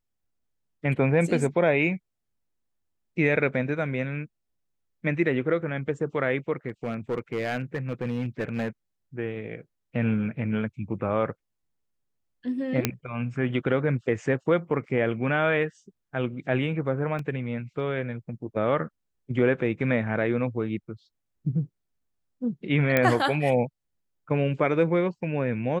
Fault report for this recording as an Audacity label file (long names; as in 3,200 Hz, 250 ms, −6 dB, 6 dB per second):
6.680000	8.680000	clipping −23 dBFS
12.850000	12.850000	click −6 dBFS
17.190000	17.190000	drop-out 2.8 ms
22.970000	22.970000	click −8 dBFS